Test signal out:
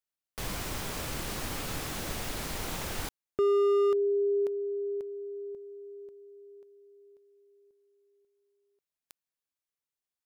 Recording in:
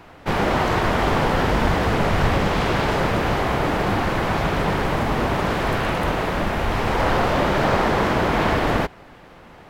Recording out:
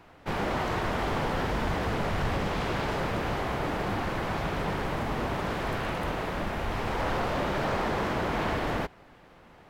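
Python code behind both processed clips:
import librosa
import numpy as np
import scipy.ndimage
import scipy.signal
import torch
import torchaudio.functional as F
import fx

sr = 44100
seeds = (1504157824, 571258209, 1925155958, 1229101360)

y = np.clip(x, -10.0 ** (-13.5 / 20.0), 10.0 ** (-13.5 / 20.0))
y = F.gain(torch.from_numpy(y), -9.0).numpy()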